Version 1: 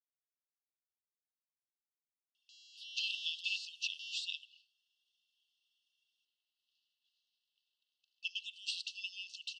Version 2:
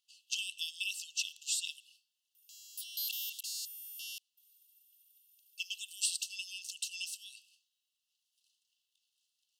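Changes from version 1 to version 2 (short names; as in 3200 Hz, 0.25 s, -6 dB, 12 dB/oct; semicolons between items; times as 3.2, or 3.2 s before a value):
speech: entry -2.65 s; master: remove LPF 4500 Hz 24 dB/oct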